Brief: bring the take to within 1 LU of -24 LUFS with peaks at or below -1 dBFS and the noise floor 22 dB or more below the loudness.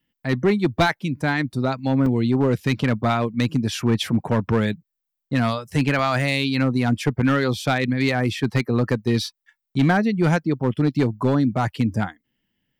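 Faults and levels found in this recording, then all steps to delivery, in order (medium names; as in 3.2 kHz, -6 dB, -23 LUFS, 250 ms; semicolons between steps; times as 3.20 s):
clipped samples 1.0%; clipping level -11.5 dBFS; dropouts 2; longest dropout 2.7 ms; loudness -21.5 LUFS; peak level -11.5 dBFS; loudness target -24.0 LUFS
-> clip repair -11.5 dBFS; interpolate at 2.06/5.99 s, 2.7 ms; trim -2.5 dB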